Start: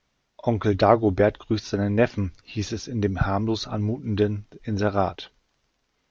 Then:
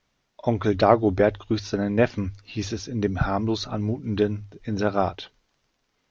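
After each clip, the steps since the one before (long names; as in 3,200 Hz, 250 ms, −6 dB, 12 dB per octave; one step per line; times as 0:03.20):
mains-hum notches 50/100 Hz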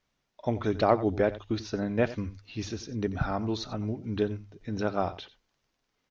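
single-tap delay 90 ms −16 dB
level −6 dB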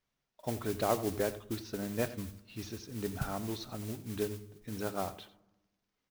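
noise that follows the level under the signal 12 dB
on a send at −16 dB: convolution reverb RT60 1.0 s, pre-delay 3 ms
on the sum: level −7.5 dB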